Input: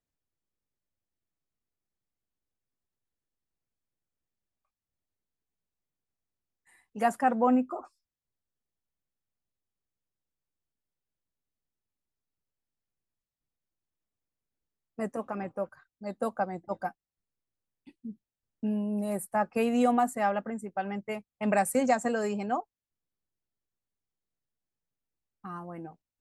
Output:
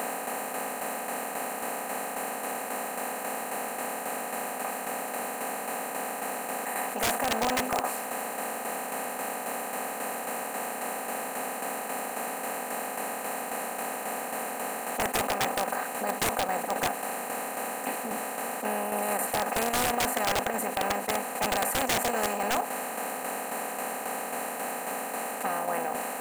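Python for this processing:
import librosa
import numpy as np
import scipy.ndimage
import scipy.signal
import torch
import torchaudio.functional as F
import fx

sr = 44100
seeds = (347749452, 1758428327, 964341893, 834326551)

p1 = fx.bin_compress(x, sr, power=0.2)
p2 = fx.highpass(p1, sr, hz=540.0, slope=6)
p3 = fx.high_shelf(p2, sr, hz=5000.0, db=7.0)
p4 = fx.notch(p3, sr, hz=4900.0, q=11.0)
p5 = fx.level_steps(p4, sr, step_db=22)
p6 = p4 + (p5 * librosa.db_to_amplitude(1.0))
p7 = fx.tremolo_shape(p6, sr, shape='saw_down', hz=3.7, depth_pct=60)
p8 = (np.mod(10.0 ** (10.5 / 20.0) * p7 + 1.0, 2.0) - 1.0) / 10.0 ** (10.5 / 20.0)
p9 = np.repeat(scipy.signal.resample_poly(p8, 1, 2), 2)[:len(p8)]
p10 = fx.env_flatten(p9, sr, amount_pct=50)
y = p10 * librosa.db_to_amplitude(-9.0)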